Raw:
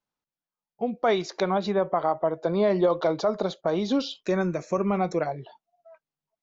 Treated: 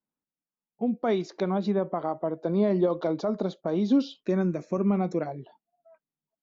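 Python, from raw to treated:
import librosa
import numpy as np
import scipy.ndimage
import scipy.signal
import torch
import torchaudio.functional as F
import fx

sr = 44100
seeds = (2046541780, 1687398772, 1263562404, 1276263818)

y = fx.env_lowpass(x, sr, base_hz=2500.0, full_db=-20.5)
y = fx.peak_eq(y, sr, hz=240.0, db=12.5, octaves=1.5)
y = y * 10.0 ** (-8.0 / 20.0)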